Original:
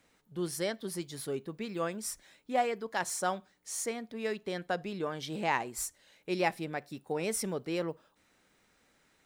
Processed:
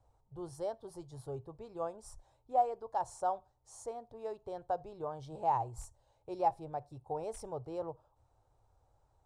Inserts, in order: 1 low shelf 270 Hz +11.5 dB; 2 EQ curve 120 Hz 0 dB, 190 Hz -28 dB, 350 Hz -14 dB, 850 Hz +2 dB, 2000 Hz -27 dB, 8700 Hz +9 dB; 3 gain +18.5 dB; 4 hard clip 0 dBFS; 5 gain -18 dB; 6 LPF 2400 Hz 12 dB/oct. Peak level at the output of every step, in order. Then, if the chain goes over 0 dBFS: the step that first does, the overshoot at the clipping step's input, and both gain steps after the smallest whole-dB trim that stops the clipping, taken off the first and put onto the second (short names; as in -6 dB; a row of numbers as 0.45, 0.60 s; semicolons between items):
-15.0, -15.0, +3.5, 0.0, -18.0, -18.0 dBFS; step 3, 3.5 dB; step 3 +14.5 dB, step 5 -14 dB